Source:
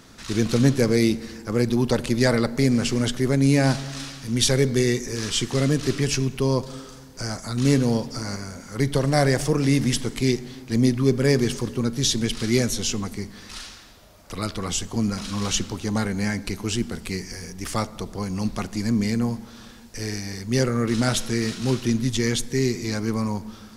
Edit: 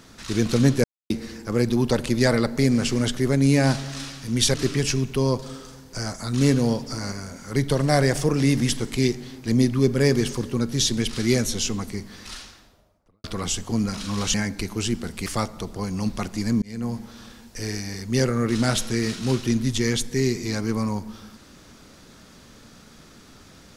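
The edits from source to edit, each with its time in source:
0.84–1.10 s: mute
4.54–5.78 s: delete
13.51–14.48 s: studio fade out
15.58–16.22 s: delete
17.14–17.65 s: delete
19.01–19.39 s: fade in

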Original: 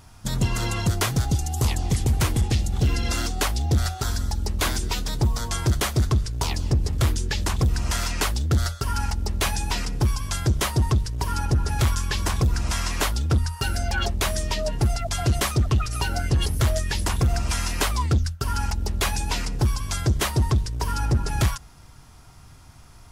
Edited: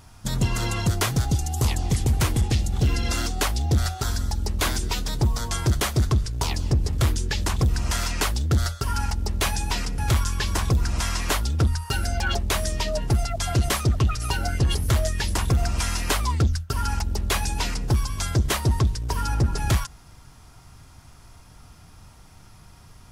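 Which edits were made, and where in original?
9.98–11.69 s: delete

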